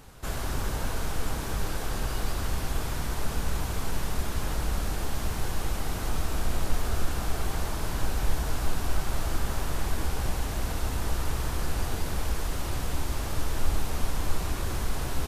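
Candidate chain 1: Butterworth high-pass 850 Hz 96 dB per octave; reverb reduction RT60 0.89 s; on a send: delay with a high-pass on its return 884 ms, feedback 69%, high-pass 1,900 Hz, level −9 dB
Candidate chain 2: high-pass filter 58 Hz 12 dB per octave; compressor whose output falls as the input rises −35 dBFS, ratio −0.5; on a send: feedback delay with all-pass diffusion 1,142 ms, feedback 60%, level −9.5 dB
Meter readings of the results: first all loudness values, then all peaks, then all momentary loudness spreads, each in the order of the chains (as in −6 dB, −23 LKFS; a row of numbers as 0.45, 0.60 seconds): −39.5, −35.5 LKFS; −28.0, −19.5 dBFS; 1, 3 LU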